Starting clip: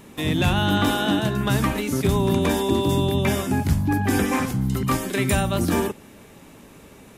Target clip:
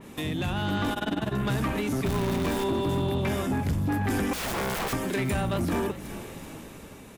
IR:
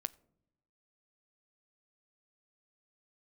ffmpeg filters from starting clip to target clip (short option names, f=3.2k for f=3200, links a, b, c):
-filter_complex "[0:a]asettb=1/sr,asplit=3[a][b][c];[a]atrim=end=0.934[d];[b]atrim=start=0.93:end=1.33,asetpts=PTS-STARTPTS,afade=t=in:d=0.004:c=qsin,afade=t=out:st=0.396:d=0.004:c=qsin,tremolo=f=20:d=1[e];[c]atrim=start=1.326[f];[d][e]acrossfade=d=0.004:c1=hsin:c2=qsin[g];[g][f]acrossfade=d=0.004:c1=qsin:c2=hsin,asettb=1/sr,asplit=3[h][i][j];[h]atrim=end=4.334[k];[i]atrim=start=4.33:end=4.93,asetpts=PTS-STARTPTS,afade=t=in:d=0.004:c=qsin,afade=t=out:st=0.596:d=0.004:c=qsin,aeval=exprs='(mod(18.8*val(0)+1,2)-1)/18.8':c=same[l];[j]atrim=start=4.926[m];[k][l]acrossfade=d=0.004:c1=hsin:c2=qsin[n];[n][m]acrossfade=d=0.004:c1=qsin:c2=hsin,acompressor=threshold=-32dB:ratio=2,asettb=1/sr,asplit=3[o][p][q];[o]atrim=end=2.064[r];[p]atrim=start=2.06:end=2.64,asetpts=PTS-STARTPTS,afade=t=in:d=0.004:c=qsin,afade=t=out:st=0.576:d=0.004:c=qsin,acrusher=bits=6:dc=4:mix=0:aa=0.000001[s];[q]atrim=start=2.636[t];[r][s]acrossfade=d=0.004:c1=hsin:c2=qsin[u];[u][t]acrossfade=d=0.004:c1=qsin:c2=hsin,dynaudnorm=f=160:g=9:m=5.5dB,asplit=5[v][w][x][y][z];[w]adelay=381,afreqshift=-36,volume=-18dB[aa];[x]adelay=762,afreqshift=-72,volume=-24.7dB[ab];[y]adelay=1143,afreqshift=-108,volume=-31.5dB[ac];[z]adelay=1524,afreqshift=-144,volume=-38.2dB[ad];[v][aa][ab][ac][ad]amix=inputs=5:normalize=0,asoftclip=type=tanh:threshold=-21.5dB,adynamicequalizer=threshold=0.00708:dfrequency=3400:dqfactor=0.7:tfrequency=3400:tqfactor=0.7:attack=5:release=100:ratio=0.375:range=3.5:mode=cutabove:tftype=highshelf"